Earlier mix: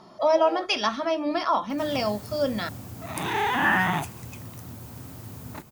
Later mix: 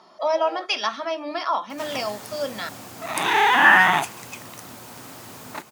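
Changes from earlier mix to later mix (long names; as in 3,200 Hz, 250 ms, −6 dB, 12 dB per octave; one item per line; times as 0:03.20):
background +8.0 dB
master: add meter weighting curve A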